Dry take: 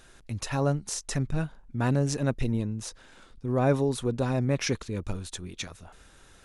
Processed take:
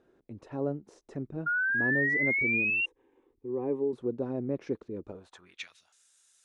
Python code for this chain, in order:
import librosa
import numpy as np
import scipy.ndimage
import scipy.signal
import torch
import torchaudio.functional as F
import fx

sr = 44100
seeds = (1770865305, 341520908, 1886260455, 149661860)

y = fx.fixed_phaser(x, sr, hz=940.0, stages=8, at=(2.7, 3.93))
y = fx.filter_sweep_bandpass(y, sr, from_hz=360.0, to_hz=7800.0, start_s=5.04, end_s=5.99, q=1.8)
y = fx.spec_paint(y, sr, seeds[0], shape='rise', start_s=1.46, length_s=1.4, low_hz=1400.0, high_hz=2800.0, level_db=-28.0)